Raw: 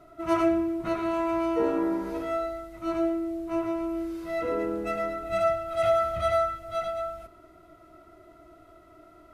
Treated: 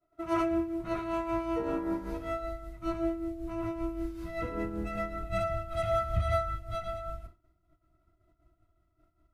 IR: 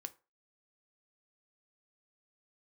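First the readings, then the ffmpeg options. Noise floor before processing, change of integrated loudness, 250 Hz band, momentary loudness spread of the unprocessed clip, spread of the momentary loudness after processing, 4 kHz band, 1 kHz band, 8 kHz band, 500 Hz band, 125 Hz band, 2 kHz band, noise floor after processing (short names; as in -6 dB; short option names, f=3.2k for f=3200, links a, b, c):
-54 dBFS, -5.5 dB, -5.0 dB, 8 LU, 8 LU, -5.0 dB, -5.5 dB, n/a, -7.0 dB, +6.5 dB, -4.5 dB, -74 dBFS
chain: -filter_complex "[0:a]agate=range=-33dB:threshold=-41dB:ratio=3:detection=peak,asubboost=boost=6.5:cutoff=160,tremolo=f=5.2:d=0.56,asplit=2[a][b];[1:a]atrim=start_sample=2205[c];[b][c]afir=irnorm=-1:irlink=0,volume=-2.5dB[d];[a][d]amix=inputs=2:normalize=0,volume=-5.5dB"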